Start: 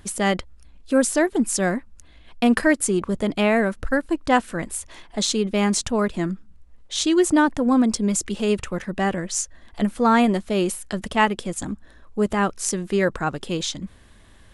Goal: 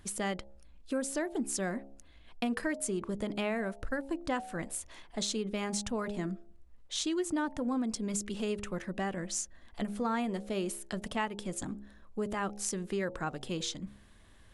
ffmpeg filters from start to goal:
-af "bandreject=f=68.36:t=h:w=4,bandreject=f=136.72:t=h:w=4,bandreject=f=205.08:t=h:w=4,bandreject=f=273.44:t=h:w=4,bandreject=f=341.8:t=h:w=4,bandreject=f=410.16:t=h:w=4,bandreject=f=478.52:t=h:w=4,bandreject=f=546.88:t=h:w=4,bandreject=f=615.24:t=h:w=4,bandreject=f=683.6:t=h:w=4,bandreject=f=751.96:t=h:w=4,bandreject=f=820.32:t=h:w=4,bandreject=f=888.68:t=h:w=4,acompressor=threshold=-23dB:ratio=3,volume=-8dB"

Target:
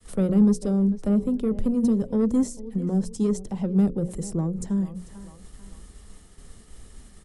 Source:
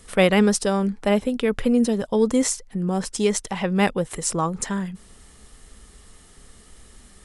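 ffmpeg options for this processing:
-filter_complex "[0:a]agate=range=-33dB:threshold=-45dB:ratio=3:detection=peak,asplit=2[a][b];[b]adelay=443,lowpass=f=2.1k:p=1,volume=-19.5dB,asplit=2[c][d];[d]adelay=443,lowpass=f=2.1k:p=1,volume=0.38,asplit=2[e][f];[f]adelay=443,lowpass=f=2.1k:p=1,volume=0.38[g];[a][c][e][g]amix=inputs=4:normalize=0,acrossover=split=440[h][i];[i]acompressor=threshold=-40dB:ratio=2.5[j];[h][j]amix=inputs=2:normalize=0,bandreject=f=60:t=h:w=6,bandreject=f=120:t=h:w=6,bandreject=f=180:t=h:w=6,bandreject=f=240:t=h:w=6,bandreject=f=300:t=h:w=6,bandreject=f=360:t=h:w=6,bandreject=f=420:t=h:w=6,bandreject=f=480:t=h:w=6,bandreject=f=540:t=h:w=6,acrossover=split=230|950|4400[k][l][m][n];[l]asoftclip=type=tanh:threshold=-23.5dB[o];[m]acompressor=threshold=-59dB:ratio=4[p];[k][o][p][n]amix=inputs=4:normalize=0,lowshelf=f=400:g=6.5,volume=-2dB"

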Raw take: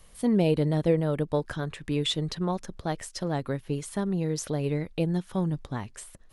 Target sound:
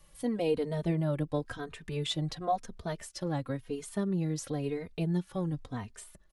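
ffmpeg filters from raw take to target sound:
-filter_complex "[0:a]asettb=1/sr,asplit=3[a][b][c];[a]atrim=end=2.084[d];[b]atrim=start=2.08:end=2.56,asetpts=PTS-STARTPTS,afade=t=in:d=0.004:c=qsin,afade=t=out:st=0.476:d=0.004:c=qsin,equalizer=f=710:w=5.3:g=12.5[e];[c]atrim=start=2.556[f];[d][e]acrossfade=d=0.004:c1=hsin:c2=qsin[g];[g][f]acrossfade=d=0.004:c1=qsin:c2=hsin,asplit=2[h][i];[i]adelay=3,afreqshift=-0.96[j];[h][j]amix=inputs=2:normalize=1,volume=-2dB"

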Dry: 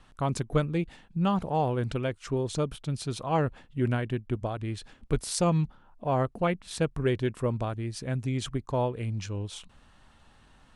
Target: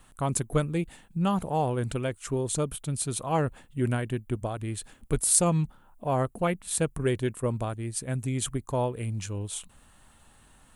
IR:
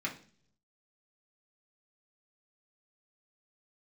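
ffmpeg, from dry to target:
-filter_complex "[0:a]aexciter=amount=5.6:drive=5.5:freq=7.3k,asettb=1/sr,asplit=3[a][b][c];[a]atrim=end=6.984[d];[b]atrim=start=6.98:end=8.11,asetpts=PTS-STARTPTS,afade=t=in:d=0.004:c=qsin,afade=t=out:st=1.126:d=0.004:c=qsin,agate=range=-33dB:threshold=-31dB:ratio=3:detection=peak[e];[c]atrim=start=8.106[f];[d][e]acrossfade=d=0.004:c1=hsin:c2=qsin[g];[g][f]acrossfade=d=0.004:c1=qsin:c2=hsin"

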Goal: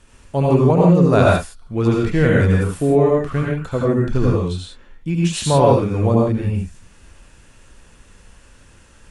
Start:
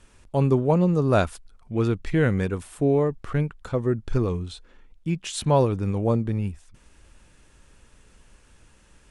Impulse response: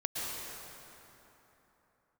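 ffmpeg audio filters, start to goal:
-filter_complex "[1:a]atrim=start_sample=2205,afade=t=out:st=0.34:d=0.01,atrim=end_sample=15435,asetrate=70560,aresample=44100[a];[0:a][a]afir=irnorm=-1:irlink=0,volume=8.5dB"

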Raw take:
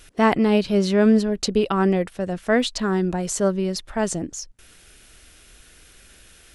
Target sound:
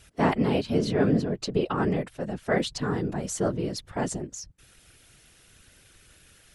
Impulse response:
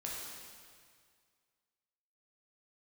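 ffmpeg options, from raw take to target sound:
-filter_complex "[0:a]asettb=1/sr,asplit=3[a][b][c];[a]atrim=end=0.904[d];[b]atrim=start=0.9:end=1.78,asetpts=PTS-STARTPTS,afade=t=in:d=0.004:c=qsin,afade=t=out:st=0.876:d=0.004:c=qsin,highshelf=f=7.1k:g=-10.5[e];[c]atrim=start=1.776[f];[d][e]acrossfade=d=0.004:c1=hsin:c2=qsin[g];[g][f]acrossfade=d=0.004:c1=qsin:c2=hsin,afftfilt=real='hypot(re,im)*cos(2*PI*random(0))':imag='hypot(re,im)*sin(2*PI*random(1))':win_size=512:overlap=0.75"

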